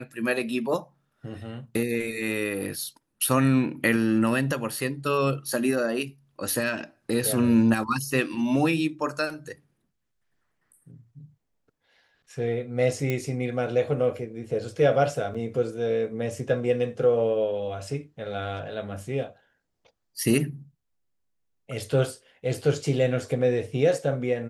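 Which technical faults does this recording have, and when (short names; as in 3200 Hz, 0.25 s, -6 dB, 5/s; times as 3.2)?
13.1 pop -14 dBFS
15.34–15.35 gap 5.9 ms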